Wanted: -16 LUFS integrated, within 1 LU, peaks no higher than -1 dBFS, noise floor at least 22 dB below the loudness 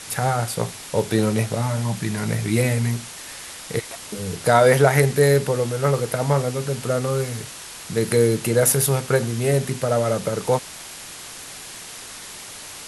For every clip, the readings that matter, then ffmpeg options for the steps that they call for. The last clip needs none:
noise floor -38 dBFS; noise floor target -43 dBFS; loudness -21.0 LUFS; peak level -1.0 dBFS; loudness target -16.0 LUFS
-> -af "afftdn=nr=6:nf=-38"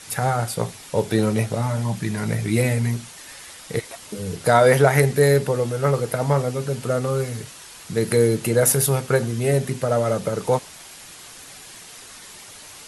noise floor -42 dBFS; noise floor target -43 dBFS
-> -af "afftdn=nr=6:nf=-42"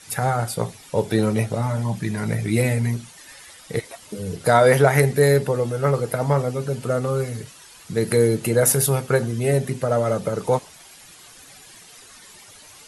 noise floor -46 dBFS; loudness -21.0 LUFS; peak level -1.0 dBFS; loudness target -16.0 LUFS
-> -af "volume=1.78,alimiter=limit=0.891:level=0:latency=1"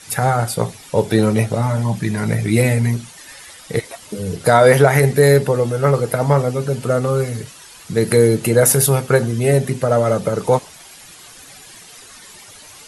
loudness -16.5 LUFS; peak level -1.0 dBFS; noise floor -41 dBFS

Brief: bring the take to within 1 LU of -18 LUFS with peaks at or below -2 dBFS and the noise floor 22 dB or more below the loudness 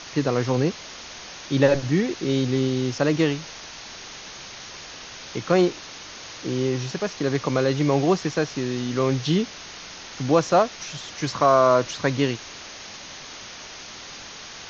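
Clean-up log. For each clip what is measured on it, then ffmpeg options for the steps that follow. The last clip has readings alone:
noise floor -40 dBFS; noise floor target -45 dBFS; loudness -23.0 LUFS; peak level -5.0 dBFS; loudness target -18.0 LUFS
-> -af "afftdn=nr=6:nf=-40"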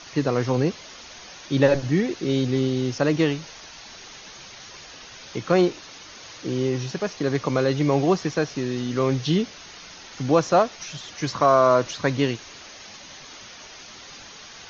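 noise floor -43 dBFS; noise floor target -45 dBFS
-> -af "afftdn=nr=6:nf=-43"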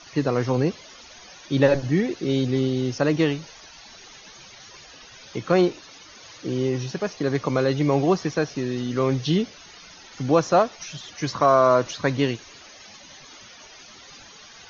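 noise floor -46 dBFS; loudness -23.0 LUFS; peak level -5.0 dBFS; loudness target -18.0 LUFS
-> -af "volume=1.78,alimiter=limit=0.794:level=0:latency=1"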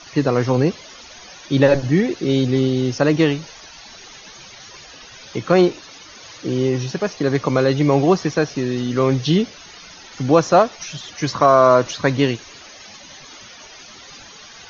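loudness -18.0 LUFS; peak level -2.0 dBFS; noise floor -41 dBFS

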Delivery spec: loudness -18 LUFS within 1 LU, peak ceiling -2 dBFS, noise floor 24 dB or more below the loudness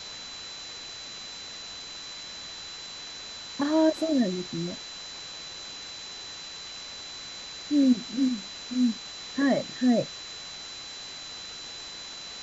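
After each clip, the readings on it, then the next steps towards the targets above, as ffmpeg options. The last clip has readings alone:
steady tone 4 kHz; tone level -40 dBFS; noise floor -41 dBFS; noise floor target -55 dBFS; loudness -30.5 LUFS; peak level -12.5 dBFS; loudness target -18.0 LUFS
-> -af "bandreject=f=4000:w=30"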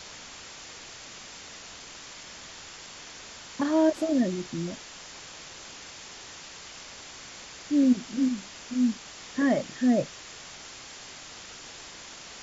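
steady tone not found; noise floor -45 dBFS; noise floor target -51 dBFS
-> -af "afftdn=nr=6:nf=-45"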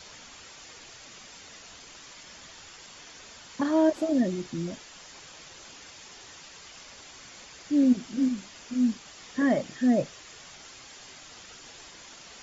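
noise floor -49 dBFS; noise floor target -51 dBFS
-> -af "afftdn=nr=6:nf=-49"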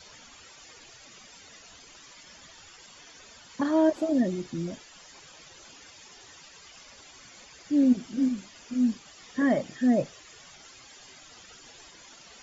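noise floor -52 dBFS; loudness -27.0 LUFS; peak level -12.5 dBFS; loudness target -18.0 LUFS
-> -af "volume=2.82"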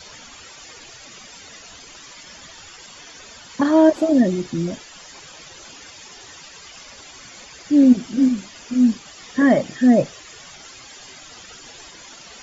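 loudness -18.0 LUFS; peak level -3.5 dBFS; noise floor -43 dBFS

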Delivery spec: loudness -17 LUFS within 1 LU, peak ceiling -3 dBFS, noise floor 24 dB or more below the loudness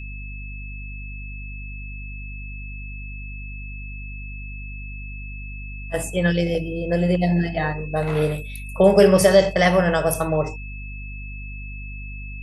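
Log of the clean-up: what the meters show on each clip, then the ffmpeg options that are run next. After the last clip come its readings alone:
hum 50 Hz; highest harmonic 250 Hz; hum level -31 dBFS; steady tone 2.6 kHz; tone level -38 dBFS; loudness -19.5 LUFS; peak level -2.5 dBFS; loudness target -17.0 LUFS
-> -af "bandreject=f=50:t=h:w=4,bandreject=f=100:t=h:w=4,bandreject=f=150:t=h:w=4,bandreject=f=200:t=h:w=4,bandreject=f=250:t=h:w=4"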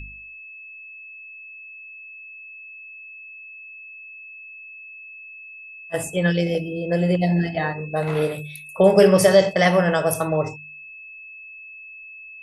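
hum not found; steady tone 2.6 kHz; tone level -38 dBFS
-> -af "bandreject=f=2600:w=30"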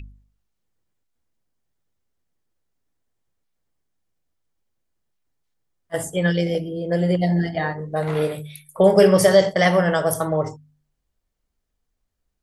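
steady tone not found; loudness -19.5 LUFS; peak level -2.5 dBFS; loudness target -17.0 LUFS
-> -af "volume=1.33,alimiter=limit=0.708:level=0:latency=1"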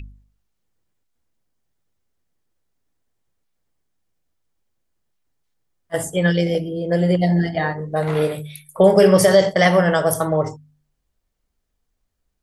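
loudness -17.5 LUFS; peak level -3.0 dBFS; noise floor -74 dBFS

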